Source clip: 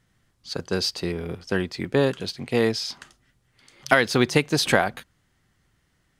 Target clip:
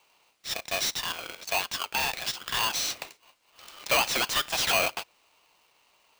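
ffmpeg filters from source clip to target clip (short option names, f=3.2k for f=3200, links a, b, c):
-filter_complex "[0:a]highpass=f=1.4k:w=0.5412,highpass=f=1.4k:w=1.3066,asplit=2[a][b];[b]highpass=f=720:p=1,volume=25dB,asoftclip=type=tanh:threshold=-7dB[c];[a][c]amix=inputs=2:normalize=0,lowpass=f=2.3k:p=1,volume=-6dB,aeval=exprs='val(0)*sgn(sin(2*PI*900*n/s))':c=same,volume=-6.5dB"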